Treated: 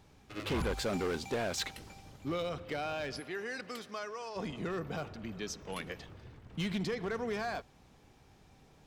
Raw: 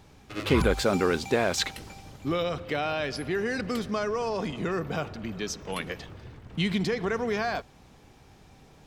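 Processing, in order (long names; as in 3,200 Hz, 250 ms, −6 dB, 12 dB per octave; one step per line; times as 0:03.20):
0:03.19–0:04.35: high-pass filter 470 Hz → 1,200 Hz 6 dB per octave
gain into a clipping stage and back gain 22 dB
level −7 dB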